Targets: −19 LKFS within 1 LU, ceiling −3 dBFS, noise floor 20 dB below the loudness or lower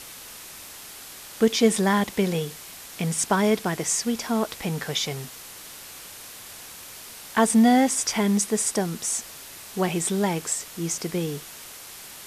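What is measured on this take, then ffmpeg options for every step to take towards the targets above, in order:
background noise floor −42 dBFS; target noise floor −44 dBFS; integrated loudness −24.0 LKFS; sample peak −7.0 dBFS; target loudness −19.0 LKFS
→ -af "afftdn=noise_reduction=6:noise_floor=-42"
-af "volume=5dB,alimiter=limit=-3dB:level=0:latency=1"

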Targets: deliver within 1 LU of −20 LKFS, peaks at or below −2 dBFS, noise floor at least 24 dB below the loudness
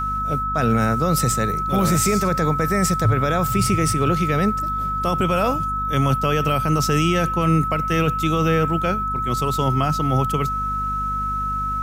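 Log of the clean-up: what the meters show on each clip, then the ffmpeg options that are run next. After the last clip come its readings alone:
mains hum 50 Hz; hum harmonics up to 250 Hz; level of the hum −28 dBFS; interfering tone 1,300 Hz; level of the tone −22 dBFS; integrated loudness −20.0 LKFS; sample peak −7.5 dBFS; target loudness −20.0 LKFS
→ -af "bandreject=frequency=50:width_type=h:width=6,bandreject=frequency=100:width_type=h:width=6,bandreject=frequency=150:width_type=h:width=6,bandreject=frequency=200:width_type=h:width=6,bandreject=frequency=250:width_type=h:width=6"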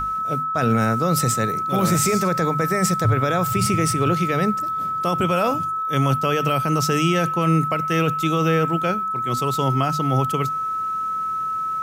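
mains hum none found; interfering tone 1,300 Hz; level of the tone −22 dBFS
→ -af "bandreject=frequency=1300:width=30"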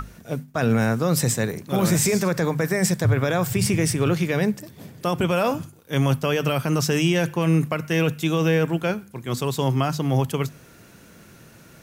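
interfering tone none found; integrated loudness −22.5 LKFS; sample peak −9.0 dBFS; target loudness −20.0 LKFS
→ -af "volume=2.5dB"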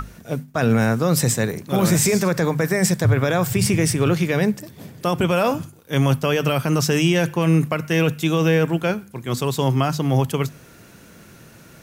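integrated loudness −20.0 LKFS; sample peak −6.5 dBFS; background noise floor −47 dBFS

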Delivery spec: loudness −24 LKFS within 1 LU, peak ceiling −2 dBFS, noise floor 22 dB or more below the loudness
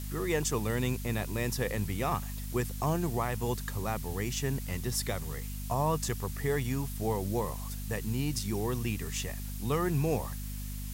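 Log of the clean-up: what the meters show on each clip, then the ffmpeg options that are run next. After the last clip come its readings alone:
mains hum 50 Hz; hum harmonics up to 250 Hz; level of the hum −36 dBFS; background noise floor −38 dBFS; target noise floor −55 dBFS; integrated loudness −33.0 LKFS; sample peak −17.5 dBFS; target loudness −24.0 LKFS
→ -af "bandreject=frequency=50:width_type=h:width=6,bandreject=frequency=100:width_type=h:width=6,bandreject=frequency=150:width_type=h:width=6,bandreject=frequency=200:width_type=h:width=6,bandreject=frequency=250:width_type=h:width=6"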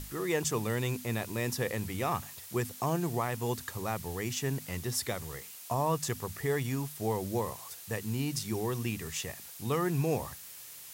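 mains hum none found; background noise floor −48 dBFS; target noise floor −56 dBFS
→ -af "afftdn=noise_reduction=8:noise_floor=-48"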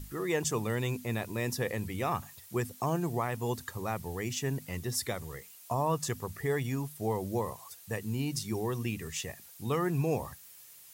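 background noise floor −53 dBFS; target noise floor −56 dBFS
→ -af "afftdn=noise_reduction=6:noise_floor=-53"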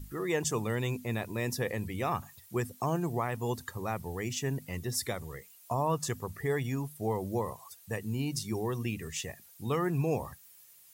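background noise floor −57 dBFS; integrated loudness −34.0 LKFS; sample peak −18.0 dBFS; target loudness −24.0 LKFS
→ -af "volume=10dB"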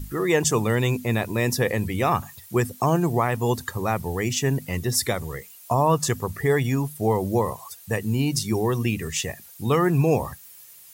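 integrated loudness −24.0 LKFS; sample peak −8.0 dBFS; background noise floor −47 dBFS

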